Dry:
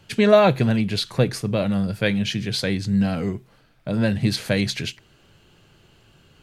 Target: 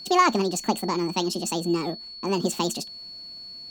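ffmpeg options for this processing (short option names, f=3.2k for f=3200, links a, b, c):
-af "asetrate=76440,aresample=44100,aeval=exprs='val(0)+0.02*sin(2*PI*4400*n/s)':c=same,volume=-4dB"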